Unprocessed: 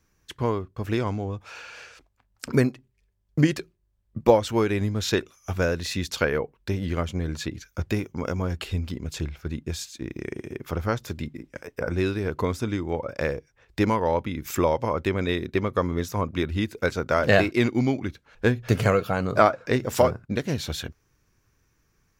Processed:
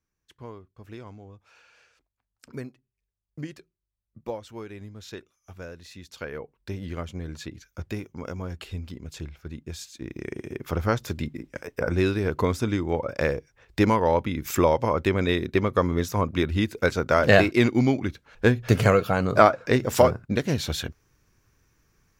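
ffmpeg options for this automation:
-af "volume=1.26,afade=t=in:st=6.07:d=0.65:silence=0.334965,afade=t=in:st=9.66:d=1.22:silence=0.375837"

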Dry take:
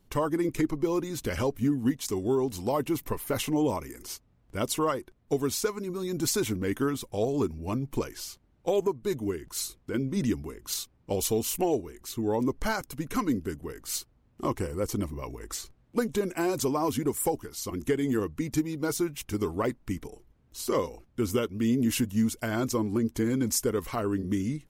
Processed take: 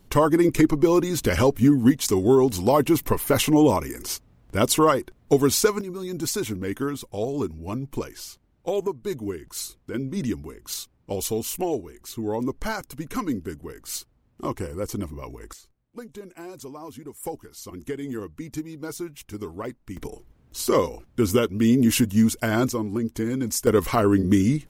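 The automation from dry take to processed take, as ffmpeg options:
-af "asetnsamples=n=441:p=0,asendcmd='5.81 volume volume 0.5dB;15.53 volume volume -11.5dB;17.23 volume volume -4.5dB;19.97 volume volume 7dB;22.7 volume volume 1dB;23.67 volume volume 10dB',volume=2.82"

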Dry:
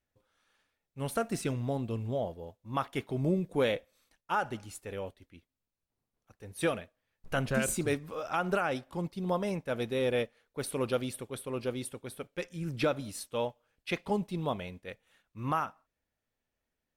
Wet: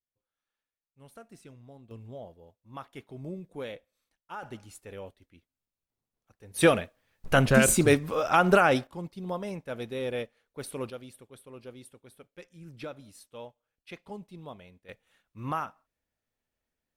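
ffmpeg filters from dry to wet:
-af "asetnsamples=n=441:p=0,asendcmd='1.91 volume volume -10dB;4.43 volume volume -3.5dB;6.54 volume volume 9.5dB;8.87 volume volume -3dB;10.9 volume volume -11dB;14.89 volume volume -1dB',volume=0.126"

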